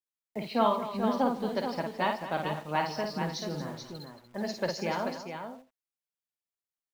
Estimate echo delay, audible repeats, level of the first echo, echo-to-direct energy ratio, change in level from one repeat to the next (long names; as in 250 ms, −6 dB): 53 ms, 5, −5.0 dB, −2.0 dB, repeats not evenly spaced